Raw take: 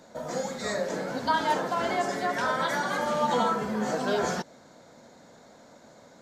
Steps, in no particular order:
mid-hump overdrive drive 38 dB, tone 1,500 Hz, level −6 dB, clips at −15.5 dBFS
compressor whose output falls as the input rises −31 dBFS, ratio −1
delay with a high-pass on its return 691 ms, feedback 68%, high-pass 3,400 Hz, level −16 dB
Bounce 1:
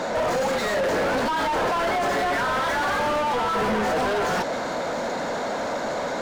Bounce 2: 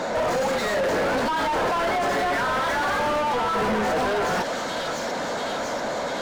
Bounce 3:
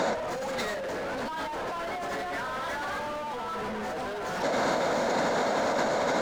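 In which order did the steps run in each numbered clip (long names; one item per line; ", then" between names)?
compressor whose output falls as the input rises, then mid-hump overdrive, then delay with a high-pass on its return
delay with a high-pass on its return, then compressor whose output falls as the input rises, then mid-hump overdrive
mid-hump overdrive, then delay with a high-pass on its return, then compressor whose output falls as the input rises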